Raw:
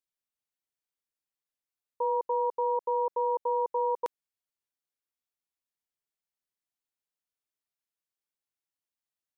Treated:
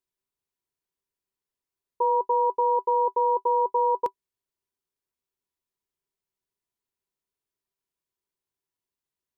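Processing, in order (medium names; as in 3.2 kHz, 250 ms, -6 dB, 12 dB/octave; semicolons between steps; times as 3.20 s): bass shelf 280 Hz +9 dB; small resonant body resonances 390/980 Hz, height 12 dB, ringing for 75 ms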